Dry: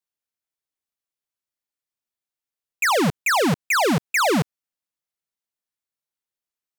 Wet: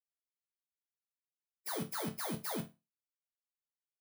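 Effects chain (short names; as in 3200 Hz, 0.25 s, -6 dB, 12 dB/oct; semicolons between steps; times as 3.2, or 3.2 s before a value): FFT order left unsorted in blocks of 16 samples; spectral noise reduction 24 dB; time stretch by phase-locked vocoder 0.59×; resonator bank D2 minor, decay 0.25 s; gain -6.5 dB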